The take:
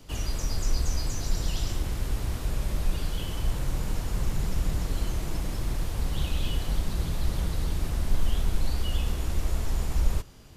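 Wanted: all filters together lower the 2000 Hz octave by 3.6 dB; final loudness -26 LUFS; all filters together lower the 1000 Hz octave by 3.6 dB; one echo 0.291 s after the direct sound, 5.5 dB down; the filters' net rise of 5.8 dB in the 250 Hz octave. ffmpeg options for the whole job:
-af "equalizer=f=250:t=o:g=8.5,equalizer=f=1k:t=o:g=-4.5,equalizer=f=2k:t=o:g=-3.5,aecho=1:1:291:0.531,volume=3.5dB"

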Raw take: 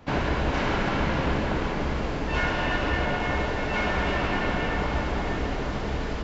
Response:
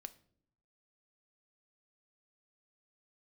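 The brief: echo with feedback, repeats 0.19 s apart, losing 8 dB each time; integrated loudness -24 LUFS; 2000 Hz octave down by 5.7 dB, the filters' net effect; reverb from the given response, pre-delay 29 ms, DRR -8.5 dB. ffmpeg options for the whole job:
-filter_complex "[0:a]equalizer=f=2k:t=o:g=-7.5,aecho=1:1:190|380|570|760|950:0.398|0.159|0.0637|0.0255|0.0102,asplit=2[a][b];[1:a]atrim=start_sample=2205,adelay=29[c];[b][c]afir=irnorm=-1:irlink=0,volume=14dB[d];[a][d]amix=inputs=2:normalize=0,volume=-6dB"

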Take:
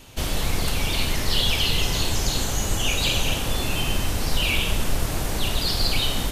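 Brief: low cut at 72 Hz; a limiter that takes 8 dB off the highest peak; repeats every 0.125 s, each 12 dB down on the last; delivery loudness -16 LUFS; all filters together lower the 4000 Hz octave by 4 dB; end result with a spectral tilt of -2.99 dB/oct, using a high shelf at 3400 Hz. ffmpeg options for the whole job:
-af "highpass=72,highshelf=f=3.4k:g=4.5,equalizer=f=4k:t=o:g=-8.5,alimiter=limit=-19.5dB:level=0:latency=1,aecho=1:1:125|250|375:0.251|0.0628|0.0157,volume=11.5dB"

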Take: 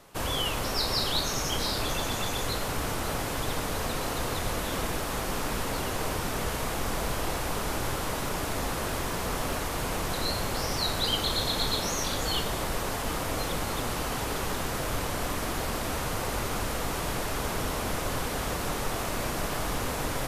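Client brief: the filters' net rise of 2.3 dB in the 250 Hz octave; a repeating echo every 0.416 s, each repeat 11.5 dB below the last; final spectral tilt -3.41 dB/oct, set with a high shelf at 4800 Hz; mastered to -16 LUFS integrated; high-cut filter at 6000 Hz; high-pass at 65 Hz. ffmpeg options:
-af "highpass=65,lowpass=6k,equalizer=f=250:t=o:g=3,highshelf=f=4.8k:g=5.5,aecho=1:1:416|832|1248:0.266|0.0718|0.0194,volume=13.5dB"

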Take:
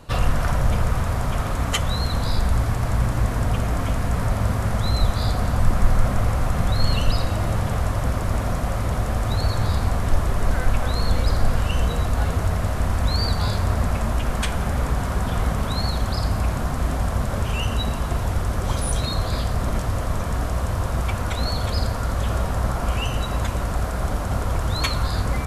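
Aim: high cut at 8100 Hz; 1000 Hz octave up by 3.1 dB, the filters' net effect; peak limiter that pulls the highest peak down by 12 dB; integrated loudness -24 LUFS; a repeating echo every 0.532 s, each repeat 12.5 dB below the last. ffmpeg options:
-af "lowpass=8.1k,equalizer=f=1k:t=o:g=4,alimiter=limit=-15dB:level=0:latency=1,aecho=1:1:532|1064|1596:0.237|0.0569|0.0137,volume=1.5dB"

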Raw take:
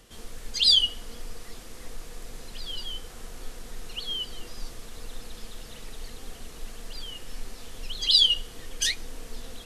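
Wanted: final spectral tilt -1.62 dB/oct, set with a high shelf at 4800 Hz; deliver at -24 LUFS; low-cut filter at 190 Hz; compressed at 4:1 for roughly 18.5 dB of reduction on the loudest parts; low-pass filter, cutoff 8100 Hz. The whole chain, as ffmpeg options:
-af "highpass=190,lowpass=8.1k,highshelf=f=4.8k:g=-6.5,acompressor=threshold=-41dB:ratio=4,volume=20dB"

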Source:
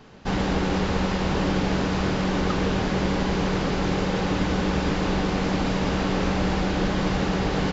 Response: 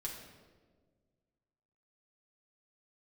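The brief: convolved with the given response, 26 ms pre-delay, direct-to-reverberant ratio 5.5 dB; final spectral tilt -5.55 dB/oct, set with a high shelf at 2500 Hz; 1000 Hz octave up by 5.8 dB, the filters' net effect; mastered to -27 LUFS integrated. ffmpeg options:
-filter_complex "[0:a]equalizer=f=1k:t=o:g=8,highshelf=f=2.5k:g=-4.5,asplit=2[a][b];[1:a]atrim=start_sample=2205,adelay=26[c];[b][c]afir=irnorm=-1:irlink=0,volume=-4.5dB[d];[a][d]amix=inputs=2:normalize=0,volume=-5.5dB"

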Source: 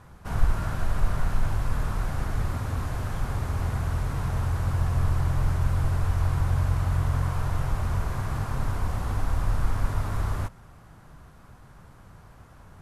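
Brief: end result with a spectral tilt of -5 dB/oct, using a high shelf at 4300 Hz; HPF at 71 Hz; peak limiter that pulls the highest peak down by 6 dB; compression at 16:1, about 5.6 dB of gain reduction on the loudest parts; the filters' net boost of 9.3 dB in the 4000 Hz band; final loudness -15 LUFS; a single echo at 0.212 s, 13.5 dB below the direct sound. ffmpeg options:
-af "highpass=71,equalizer=f=4k:t=o:g=7.5,highshelf=f=4.3k:g=7.5,acompressor=threshold=-27dB:ratio=16,alimiter=level_in=2dB:limit=-24dB:level=0:latency=1,volume=-2dB,aecho=1:1:212:0.211,volume=20.5dB"

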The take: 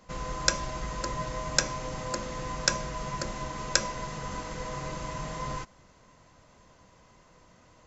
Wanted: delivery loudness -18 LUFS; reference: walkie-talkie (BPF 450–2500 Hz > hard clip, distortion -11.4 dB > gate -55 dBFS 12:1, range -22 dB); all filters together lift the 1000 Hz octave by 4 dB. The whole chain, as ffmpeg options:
-af "highpass=450,lowpass=2.5k,equalizer=f=1k:t=o:g=4.5,asoftclip=type=hard:threshold=-26.5dB,agate=range=-22dB:threshold=-55dB:ratio=12,volume=17dB"

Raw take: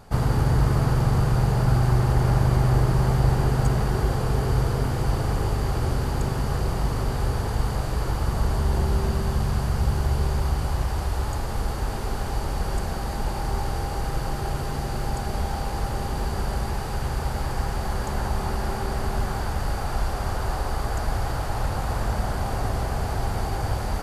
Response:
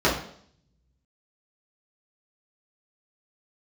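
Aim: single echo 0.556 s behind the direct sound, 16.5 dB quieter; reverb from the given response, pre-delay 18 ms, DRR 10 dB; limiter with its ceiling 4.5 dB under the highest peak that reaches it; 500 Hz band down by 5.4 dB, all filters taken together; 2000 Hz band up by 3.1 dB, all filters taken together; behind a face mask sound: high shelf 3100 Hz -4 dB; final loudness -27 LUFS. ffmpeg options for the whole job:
-filter_complex "[0:a]equalizer=f=500:t=o:g=-7.5,equalizer=f=2k:t=o:g=6,alimiter=limit=-13dB:level=0:latency=1,aecho=1:1:556:0.15,asplit=2[a][b];[1:a]atrim=start_sample=2205,adelay=18[c];[b][c]afir=irnorm=-1:irlink=0,volume=-28dB[d];[a][d]amix=inputs=2:normalize=0,highshelf=f=3.1k:g=-4,volume=-1dB"

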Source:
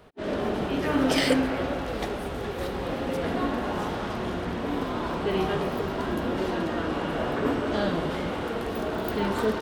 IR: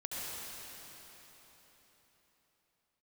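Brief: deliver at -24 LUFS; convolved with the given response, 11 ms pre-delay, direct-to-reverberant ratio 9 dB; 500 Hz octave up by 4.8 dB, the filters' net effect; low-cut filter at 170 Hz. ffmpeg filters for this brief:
-filter_complex "[0:a]highpass=170,equalizer=f=500:t=o:g=6,asplit=2[a][b];[1:a]atrim=start_sample=2205,adelay=11[c];[b][c]afir=irnorm=-1:irlink=0,volume=-12dB[d];[a][d]amix=inputs=2:normalize=0,volume=1dB"

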